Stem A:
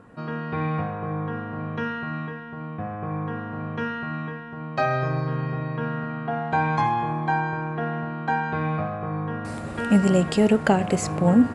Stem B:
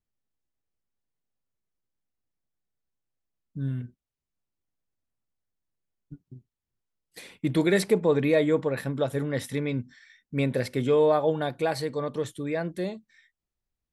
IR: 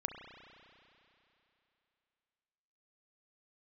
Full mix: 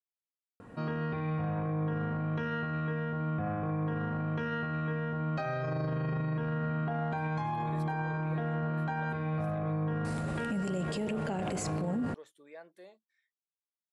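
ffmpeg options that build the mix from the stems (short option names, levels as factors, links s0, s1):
-filter_complex "[0:a]equalizer=f=1300:w=1.5:g=-2.5,alimiter=limit=0.15:level=0:latency=1:release=91,adelay=600,volume=0.668,asplit=2[s0][s1];[s1]volume=0.531[s2];[1:a]highpass=710,tiltshelf=f=1100:g=5,volume=0.158[s3];[2:a]atrim=start_sample=2205[s4];[s2][s4]afir=irnorm=-1:irlink=0[s5];[s0][s3][s5]amix=inputs=3:normalize=0,alimiter=level_in=1.33:limit=0.0631:level=0:latency=1:release=18,volume=0.75"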